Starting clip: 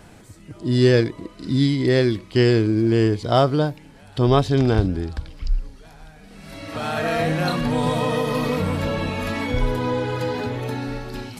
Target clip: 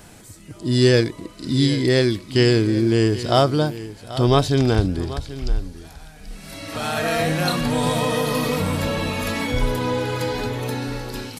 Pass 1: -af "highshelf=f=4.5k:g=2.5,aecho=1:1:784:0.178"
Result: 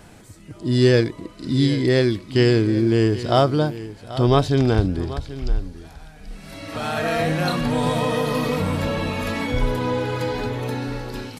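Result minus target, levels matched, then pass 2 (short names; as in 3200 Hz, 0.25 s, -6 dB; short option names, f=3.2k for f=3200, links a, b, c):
8000 Hz band -6.0 dB
-af "highshelf=f=4.5k:g=11,aecho=1:1:784:0.178"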